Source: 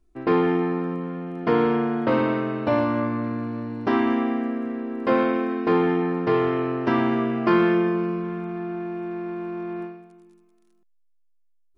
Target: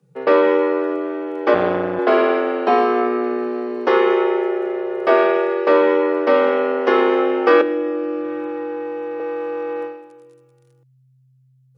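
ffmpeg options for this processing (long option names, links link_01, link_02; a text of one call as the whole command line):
ffmpeg -i in.wav -filter_complex "[0:a]asettb=1/sr,asplit=3[link_01][link_02][link_03];[link_01]atrim=end=7.614[link_04];[link_02]atrim=start=7.61:end=9.2,asetpts=PTS-STARTPTS,afade=type=in:duration=0.004:curve=qsin,afade=type=out:start_time=1.586:duration=0.004:curve=qsin,acrossover=split=240[link_05][link_06];[link_06]acompressor=threshold=-32dB:ratio=6[link_07];[link_05][link_07]amix=inputs=2:normalize=0[link_08];[link_03]atrim=start=9.196[link_09];[link_04][link_08]acrossfade=duration=0.004:curve1=hsin:curve2=qsin[link_10];[link_10][link_09]acrossfade=duration=0.004:curve1=qsin:curve2=hsin,afreqshift=130,asettb=1/sr,asplit=3[link_11][link_12][link_13];[link_11]atrim=end=1.544[link_14];[link_12]atrim=start=1.54:end=1.99,asetpts=PTS-STARTPTS,afade=type=in:duration=0.004:curve=qsin,afade=type=out:start_time=0.446:duration=0.004:curve=qsin,tremolo=f=180:d=0.974[link_15];[link_13]atrim=start=1.986[link_16];[link_14][link_15]acrossfade=duration=0.004:curve1=hsin:curve2=qsin[link_17];[link_17][link_16]acrossfade=duration=0.004:curve1=qsin:curve2=hsin,volume=6dB" out.wav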